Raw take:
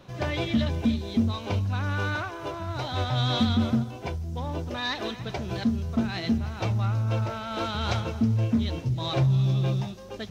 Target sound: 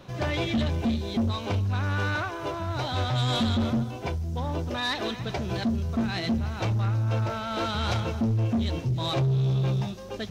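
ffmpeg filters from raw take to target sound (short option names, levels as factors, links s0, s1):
-af "asoftclip=type=tanh:threshold=0.0668,volume=1.41"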